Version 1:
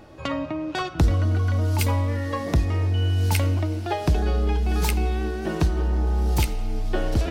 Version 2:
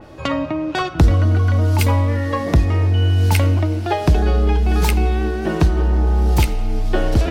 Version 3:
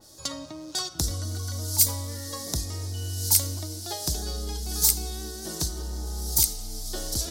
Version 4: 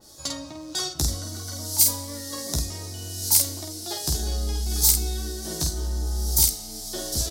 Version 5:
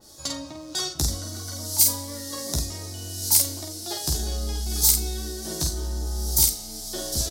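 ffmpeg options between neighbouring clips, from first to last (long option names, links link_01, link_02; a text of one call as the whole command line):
ffmpeg -i in.wav -af "adynamicequalizer=threshold=0.00447:dfrequency=3500:dqfactor=0.7:tfrequency=3500:tqfactor=0.7:attack=5:release=100:ratio=0.375:range=2:mode=cutabove:tftype=highshelf,volume=6.5dB" out.wav
ffmpeg -i in.wav -af "aexciter=amount=13.1:drive=9.2:freq=4100,volume=-17.5dB" out.wav
ffmpeg -i in.wav -af "aecho=1:1:14|49:0.631|0.631" out.wav
ffmpeg -i in.wav -filter_complex "[0:a]asplit=2[link_01][link_02];[link_02]adelay=40,volume=-13.5dB[link_03];[link_01][link_03]amix=inputs=2:normalize=0" out.wav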